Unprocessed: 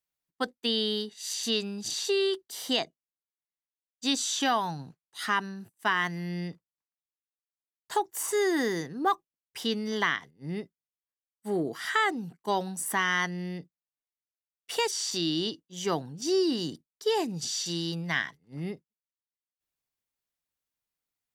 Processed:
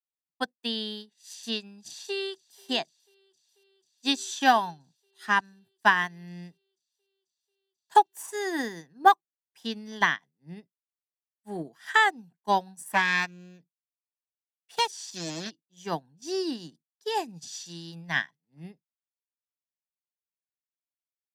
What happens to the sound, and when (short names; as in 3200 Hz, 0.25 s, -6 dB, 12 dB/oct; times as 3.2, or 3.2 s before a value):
1.86–2.65 echo throw 0.49 s, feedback 80%, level -15.5 dB
12.88–15.51 Doppler distortion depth 0.53 ms
whole clip: HPF 130 Hz 24 dB/oct; comb 1.2 ms, depth 41%; upward expander 2.5:1, over -39 dBFS; gain +9 dB